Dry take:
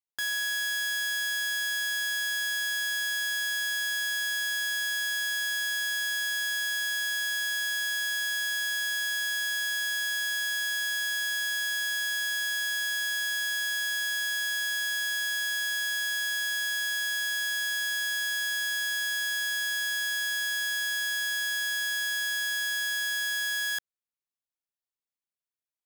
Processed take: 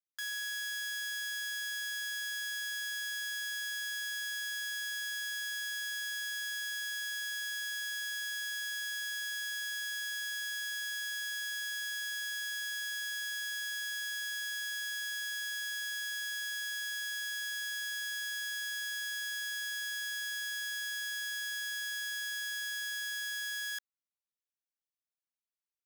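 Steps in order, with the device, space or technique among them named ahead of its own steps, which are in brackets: headphones lying on a table (high-pass 1.1 kHz 24 dB/octave; peaking EQ 5.8 kHz +4.5 dB 0.22 oct); trim -8 dB

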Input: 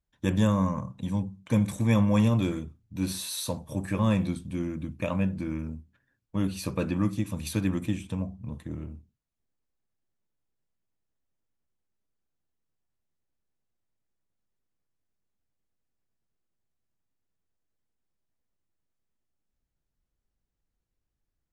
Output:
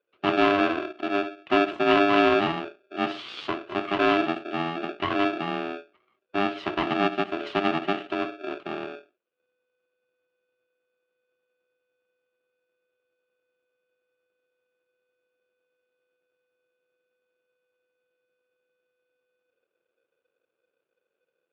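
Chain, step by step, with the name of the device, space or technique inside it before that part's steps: ring modulator pedal into a guitar cabinet (polarity switched at an audio rate 500 Hz; cabinet simulation 98–3600 Hz, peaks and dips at 350 Hz +8 dB, 1.2 kHz +8 dB, 2.8 kHz +7 dB)

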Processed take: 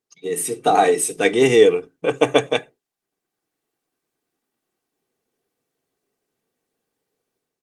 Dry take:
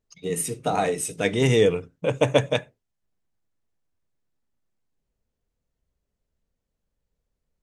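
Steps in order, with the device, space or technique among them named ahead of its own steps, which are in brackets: comb 2.6 ms, depth 58%; 2.07–2.55 s: dynamic bell 1.2 kHz, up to +4 dB, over -46 dBFS, Q 5.5; video call (high-pass 170 Hz 24 dB/octave; level rider gain up to 10 dB; Opus 32 kbps 48 kHz)

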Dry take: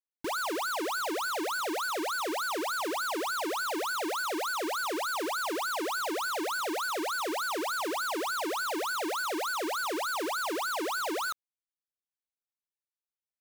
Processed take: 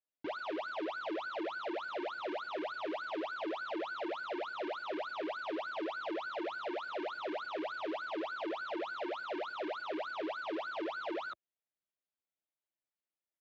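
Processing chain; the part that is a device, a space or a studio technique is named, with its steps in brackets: barber-pole flanger into a guitar amplifier (endless flanger 7.9 ms +0.42 Hz; saturation -39 dBFS, distortion -11 dB; cabinet simulation 90–3500 Hz, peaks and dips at 340 Hz +5 dB, 620 Hz +8 dB, 1.1 kHz -3 dB); trim +1 dB

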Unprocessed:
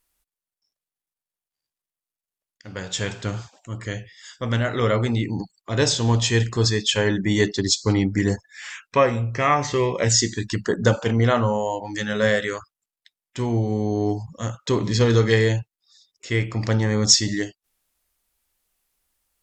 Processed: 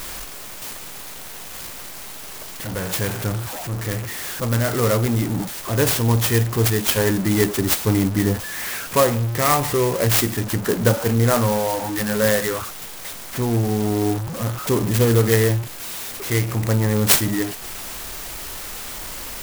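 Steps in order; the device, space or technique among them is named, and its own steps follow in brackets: early CD player with a faulty converter (jump at every zero crossing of -24.5 dBFS; sampling jitter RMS 0.076 ms)

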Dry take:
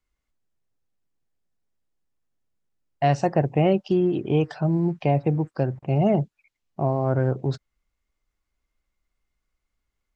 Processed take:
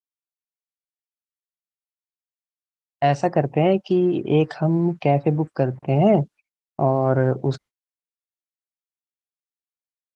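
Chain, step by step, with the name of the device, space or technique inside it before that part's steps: video call (high-pass 160 Hz 6 dB/octave; level rider gain up to 14 dB; gate -36 dBFS, range -34 dB; trim -4.5 dB; Opus 24 kbps 48 kHz)

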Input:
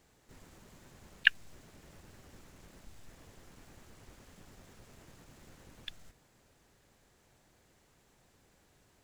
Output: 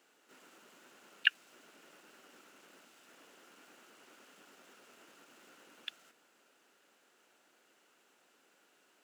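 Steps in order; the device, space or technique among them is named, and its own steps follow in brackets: laptop speaker (high-pass 260 Hz 24 dB/octave; peaking EQ 1.4 kHz +9.5 dB 0.28 oct; peaking EQ 2.8 kHz +8 dB 0.35 oct; peak limiter -5.5 dBFS, peak gain reduction 6 dB); trim -2 dB

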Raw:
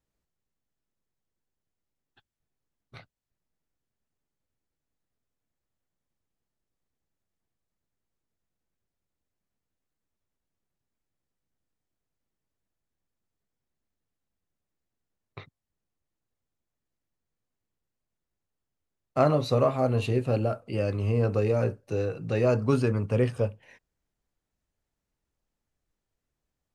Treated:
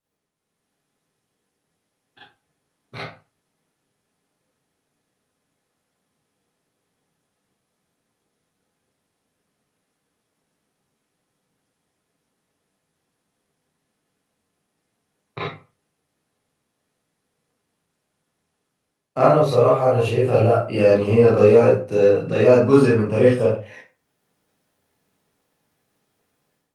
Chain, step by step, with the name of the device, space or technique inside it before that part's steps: 19.21–20.63 s: graphic EQ with 31 bands 100 Hz +6 dB, 250 Hz -10 dB, 4 kHz -5 dB; far-field microphone of a smart speaker (reverberation RT60 0.35 s, pre-delay 28 ms, DRR -8 dB; high-pass 110 Hz 24 dB/octave; level rider gain up to 11.5 dB; trim -1 dB; Opus 32 kbps 48 kHz)

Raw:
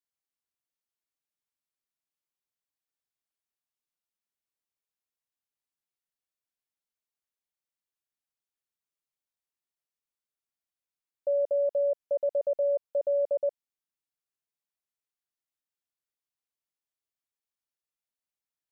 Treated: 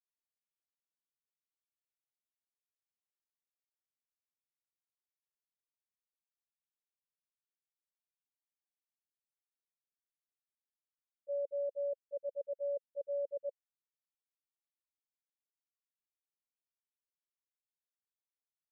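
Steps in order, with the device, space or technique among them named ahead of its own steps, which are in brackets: gate -25 dBFS, range -29 dB; under water (low-pass 470 Hz 24 dB/octave; peaking EQ 540 Hz +6 dB 0.41 oct); trim -2 dB

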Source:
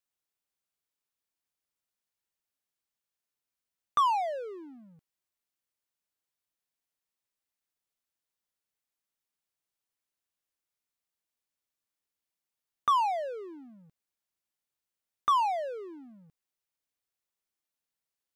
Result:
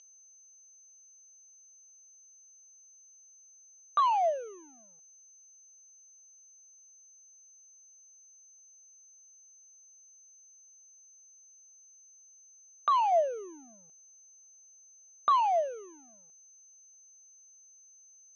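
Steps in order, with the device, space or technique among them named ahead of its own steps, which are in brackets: toy sound module (decimation joined by straight lines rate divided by 6×; class-D stage that switches slowly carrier 6.2 kHz; cabinet simulation 540–4000 Hz, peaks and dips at 660 Hz +9 dB, 1.9 kHz -7 dB, 2.9 kHz +9 dB); 13.12–15.36 s: bass shelf 430 Hz +9 dB

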